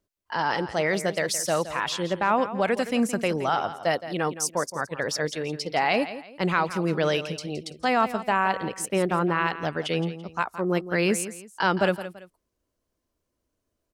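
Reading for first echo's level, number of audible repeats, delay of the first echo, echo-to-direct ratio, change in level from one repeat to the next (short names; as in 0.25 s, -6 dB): -13.0 dB, 2, 0.168 s, -12.5 dB, -10.0 dB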